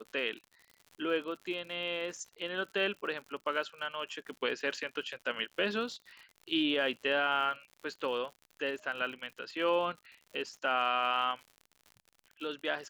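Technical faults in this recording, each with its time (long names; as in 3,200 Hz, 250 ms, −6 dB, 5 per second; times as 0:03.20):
surface crackle 75 per second −43 dBFS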